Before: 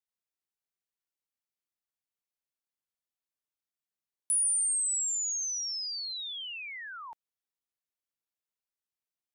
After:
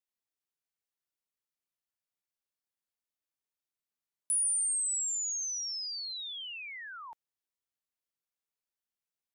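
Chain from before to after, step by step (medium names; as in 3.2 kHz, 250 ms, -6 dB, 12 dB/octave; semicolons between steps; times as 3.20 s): 5.23–5.90 s: peaking EQ 340 Hz +12.5 dB 0.37 oct; trim -2 dB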